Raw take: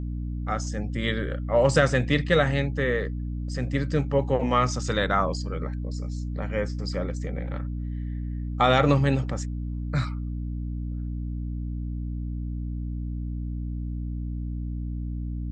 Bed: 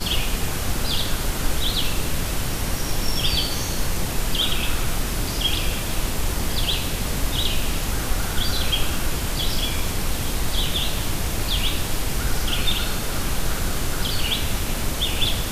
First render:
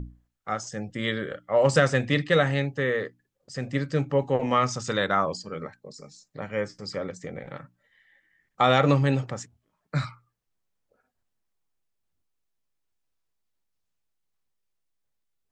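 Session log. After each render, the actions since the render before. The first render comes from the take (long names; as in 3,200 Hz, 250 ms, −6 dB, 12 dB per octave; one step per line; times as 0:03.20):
mains-hum notches 60/120/180/240/300 Hz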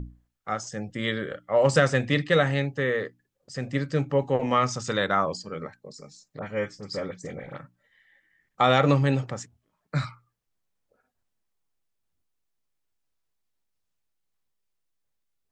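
0:06.39–0:07.56: all-pass dispersion highs, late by 48 ms, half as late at 2,100 Hz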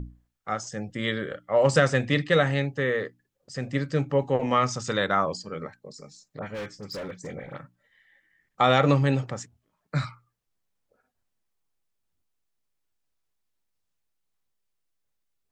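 0:06.54–0:07.27: hard clipping −31.5 dBFS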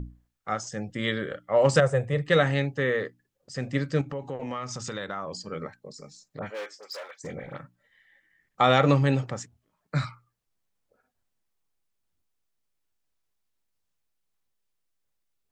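0:01.80–0:02.28: drawn EQ curve 150 Hz 0 dB, 270 Hz −16 dB, 460 Hz +3 dB, 4,900 Hz −18 dB, 9,900 Hz +3 dB
0:04.01–0:05.41: downward compressor 4 to 1, threshold −31 dBFS
0:06.49–0:07.23: high-pass filter 330 Hz → 770 Hz 24 dB per octave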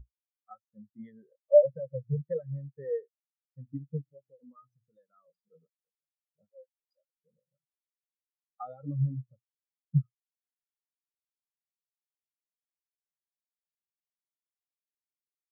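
downward compressor 10 to 1, threshold −24 dBFS, peak gain reduction 10.5 dB
every bin expanded away from the loudest bin 4 to 1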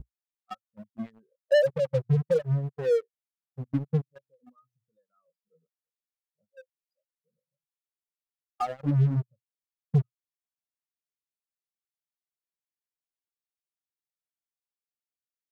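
leveller curve on the samples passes 3
downward compressor 3 to 1, threshold −20 dBFS, peak gain reduction 6.5 dB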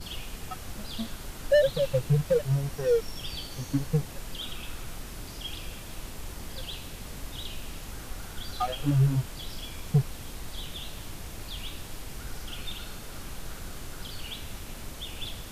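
mix in bed −15.5 dB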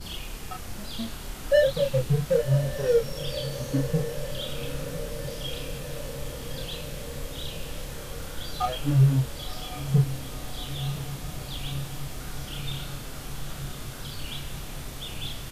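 double-tracking delay 30 ms −3 dB
feedback delay with all-pass diffusion 1,056 ms, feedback 74%, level −12 dB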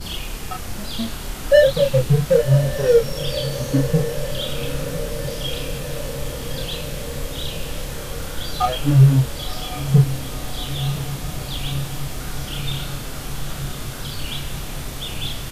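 level +7.5 dB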